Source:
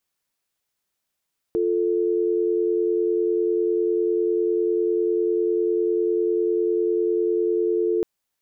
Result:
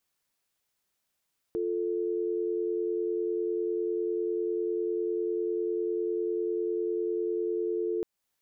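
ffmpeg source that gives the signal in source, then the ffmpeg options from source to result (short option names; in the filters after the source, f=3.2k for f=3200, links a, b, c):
-f lavfi -i "aevalsrc='0.0841*(sin(2*PI*350*t)+sin(2*PI*440*t))':d=6.48:s=44100"
-af "alimiter=limit=-24dB:level=0:latency=1:release=268"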